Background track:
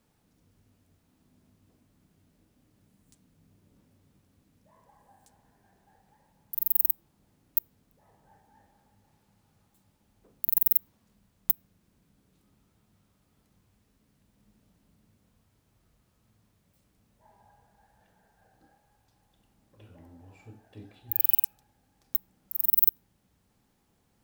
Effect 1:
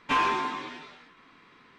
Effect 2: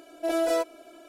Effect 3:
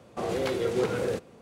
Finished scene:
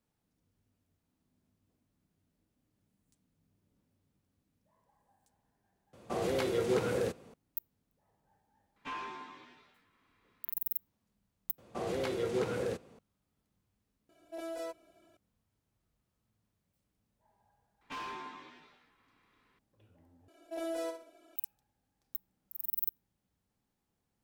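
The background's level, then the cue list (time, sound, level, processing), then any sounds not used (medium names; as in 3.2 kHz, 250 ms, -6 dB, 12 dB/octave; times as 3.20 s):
background track -12.5 dB
5.93 s: replace with 3 -3.5 dB + treble shelf 11 kHz +6 dB
8.76 s: add 1 -16.5 dB
11.58 s: add 3 -6 dB
14.09 s: add 2 -15.5 dB
17.81 s: add 1 -15 dB + overload inside the chain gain 24 dB
20.28 s: replace with 2 -13 dB + feedback delay 61 ms, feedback 31%, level -7.5 dB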